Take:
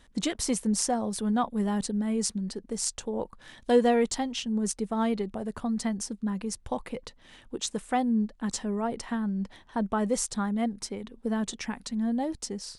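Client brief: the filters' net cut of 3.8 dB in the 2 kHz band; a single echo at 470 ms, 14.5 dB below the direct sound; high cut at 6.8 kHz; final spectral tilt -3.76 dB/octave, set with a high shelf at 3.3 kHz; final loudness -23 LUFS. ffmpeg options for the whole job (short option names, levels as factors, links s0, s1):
-af "lowpass=6800,equalizer=f=2000:t=o:g=-7.5,highshelf=f=3300:g=9,aecho=1:1:470:0.188,volume=2"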